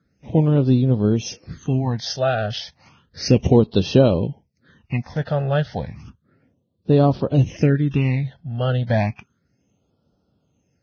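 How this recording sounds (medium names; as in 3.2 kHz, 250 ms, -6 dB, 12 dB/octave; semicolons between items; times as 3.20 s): phasing stages 8, 0.32 Hz, lowest notch 290–2100 Hz; Vorbis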